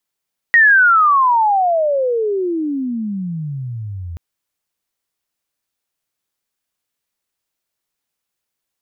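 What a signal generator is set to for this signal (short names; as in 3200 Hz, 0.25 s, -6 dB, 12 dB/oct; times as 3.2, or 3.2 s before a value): chirp logarithmic 1900 Hz -> 81 Hz -6 dBFS -> -25 dBFS 3.63 s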